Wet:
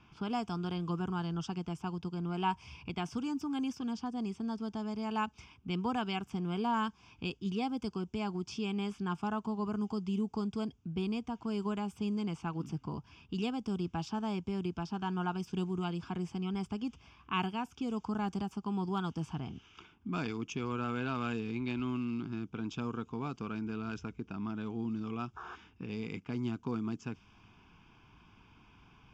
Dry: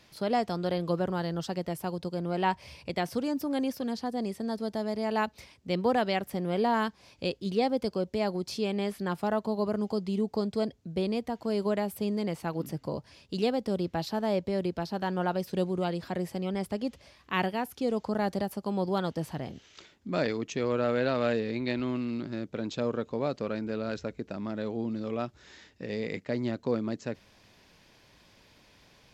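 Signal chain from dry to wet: low-pass opened by the level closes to 2300 Hz, open at -23.5 dBFS; in parallel at +1 dB: compressor, threshold -42 dBFS, peak gain reduction 19 dB; on the sum: painted sound noise, 25.36–25.56, 350–1800 Hz -40 dBFS; fixed phaser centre 2800 Hz, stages 8; gain -3 dB

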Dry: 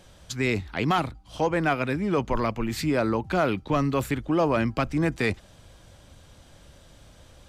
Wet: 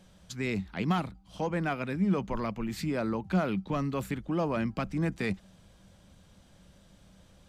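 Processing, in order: bell 190 Hz +14.5 dB 0.29 oct; gain -8 dB

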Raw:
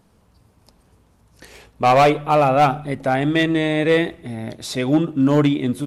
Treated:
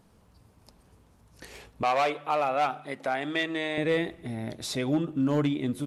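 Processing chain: 1.83–3.78 weighting filter A; compressor 1.5:1, threshold -31 dBFS, peak gain reduction 7.5 dB; gain -3 dB

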